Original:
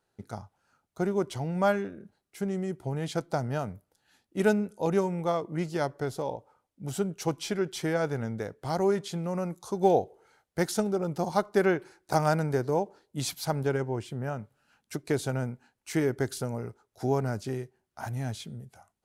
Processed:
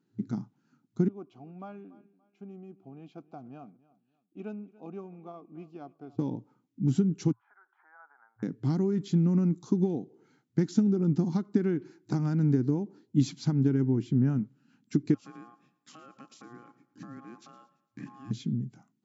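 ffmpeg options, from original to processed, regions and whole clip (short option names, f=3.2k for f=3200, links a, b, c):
-filter_complex "[0:a]asettb=1/sr,asplit=3[a][b][c];[a]atrim=end=1.084[d];[b]atrim=start=1.08:end=6.19,asetpts=PTS-STARTPTS,afade=t=in:d=0.004:c=qsin,afade=t=out:st=5.106:d=0.004:c=qsin,asplit=3[e][f][g];[e]bandpass=f=730:t=q:w=8,volume=0dB[h];[f]bandpass=f=1.09k:t=q:w=8,volume=-6dB[i];[g]bandpass=f=2.44k:t=q:w=8,volume=-9dB[j];[h][i][j]amix=inputs=3:normalize=0,aecho=1:1:287|574:0.0944|0.0293,atrim=end_sample=225351[k];[c]atrim=start=6.186[l];[d][k]acrossfade=d=0.004:c1=hsin:c2=qsin[m];[m][l]acrossfade=d=0.004:c1=qsin:c2=hsin,asettb=1/sr,asplit=3[n][o][p];[n]atrim=end=7.324[q];[o]atrim=start=7.32:end=8.43,asetpts=PTS-STARTPTS,afade=t=in:d=0.004:c=qsin,afade=t=out:st=1.106:d=0.004:c=qsin,acompressor=threshold=-36dB:ratio=4:attack=3.2:release=140:knee=1:detection=peak,asuperpass=centerf=1100:order=8:qfactor=1.3[r];[p]atrim=start=8.426[s];[q][r]acrossfade=d=0.004:c1=hsin:c2=qsin[t];[t][s]acrossfade=d=0.004:c1=qsin:c2=hsin,asettb=1/sr,asplit=3[u][v][w];[u]atrim=end=15.144[x];[v]atrim=start=15.14:end=18.31,asetpts=PTS-STARTPTS,afade=t=in:d=0.004:c=qsin,afade=t=out:st=3.166:d=0.004:c=qsin,aeval=exprs='val(0)*sin(2*PI*950*n/s)':c=same,acompressor=threshold=-43dB:ratio=5:attack=3.2:release=140:knee=1:detection=peak,aecho=1:1:113|226|339|452:0.126|0.0541|0.0233|0.01,atrim=end_sample=139797[y];[w]atrim=start=18.306[z];[x][y]acrossfade=d=0.004:c1=hsin:c2=qsin[aa];[aa][z]acrossfade=d=0.004:c1=qsin:c2=hsin,acompressor=threshold=-29dB:ratio=10,afftfilt=real='re*between(b*sr/4096,110,7600)':imag='im*between(b*sr/4096,110,7600)':win_size=4096:overlap=0.75,lowshelf=f=400:t=q:w=3:g=13,volume=-5dB"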